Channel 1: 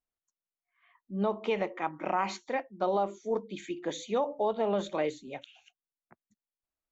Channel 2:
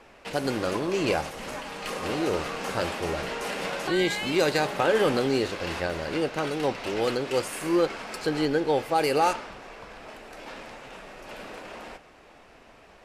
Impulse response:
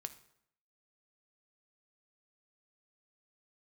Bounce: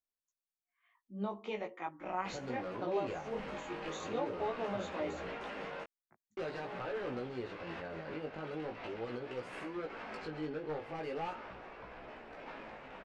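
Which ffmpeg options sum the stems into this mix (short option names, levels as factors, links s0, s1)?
-filter_complex "[0:a]volume=0.501[s0];[1:a]aeval=exprs='0.119*(abs(mod(val(0)/0.119+3,4)-2)-1)':c=same,lowpass=2400,alimiter=level_in=1.58:limit=0.0631:level=0:latency=1:release=169,volume=0.631,adelay=2000,volume=0.708,asplit=3[s1][s2][s3];[s1]atrim=end=5.84,asetpts=PTS-STARTPTS,afade=t=out:st=5.836:d=0.004:c=hsin[s4];[s2]atrim=start=5.84:end=6.37,asetpts=PTS-STARTPTS,volume=0[s5];[s3]atrim=start=6.37,asetpts=PTS-STARTPTS,afade=t=in:d=0.004:c=hsin[s6];[s4][s5][s6]concat=n=3:v=0:a=1[s7];[s0][s7]amix=inputs=2:normalize=0,flanger=delay=16:depth=3.5:speed=0.42,highshelf=f=6600:g=4.5"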